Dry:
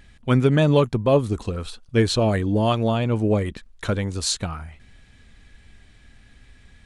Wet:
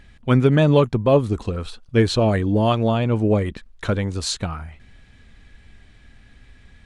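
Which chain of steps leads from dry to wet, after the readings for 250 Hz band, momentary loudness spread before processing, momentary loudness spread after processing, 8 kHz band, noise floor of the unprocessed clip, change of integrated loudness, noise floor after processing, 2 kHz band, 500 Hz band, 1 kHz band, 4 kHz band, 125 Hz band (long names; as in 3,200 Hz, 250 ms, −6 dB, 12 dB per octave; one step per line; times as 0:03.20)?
+2.0 dB, 13 LU, 13 LU, −3.0 dB, −52 dBFS, +2.0 dB, −51 dBFS, +1.5 dB, +2.0 dB, +2.0 dB, −0.5 dB, +2.0 dB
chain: high-shelf EQ 5,900 Hz −8 dB
level +2 dB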